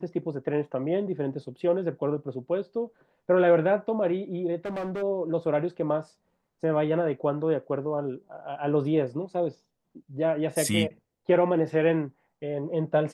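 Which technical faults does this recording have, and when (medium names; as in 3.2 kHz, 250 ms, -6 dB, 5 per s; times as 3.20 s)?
4.65–5.03 s: clipped -28.5 dBFS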